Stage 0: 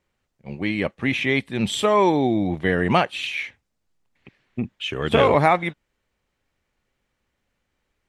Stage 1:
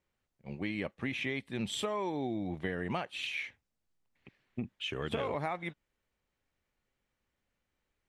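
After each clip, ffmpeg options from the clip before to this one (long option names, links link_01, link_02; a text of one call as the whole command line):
ffmpeg -i in.wav -af "acompressor=threshold=-23dB:ratio=6,volume=-8.5dB" out.wav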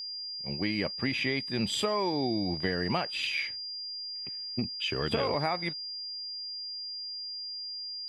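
ffmpeg -i in.wav -af "aeval=exprs='val(0)+0.00891*sin(2*PI*4800*n/s)':channel_layout=same,volume=5dB" out.wav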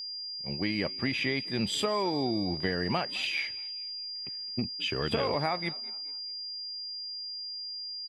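ffmpeg -i in.wav -filter_complex "[0:a]asplit=4[link_01][link_02][link_03][link_04];[link_02]adelay=211,afreqshift=54,volume=-22dB[link_05];[link_03]adelay=422,afreqshift=108,volume=-30.2dB[link_06];[link_04]adelay=633,afreqshift=162,volume=-38.4dB[link_07];[link_01][link_05][link_06][link_07]amix=inputs=4:normalize=0" out.wav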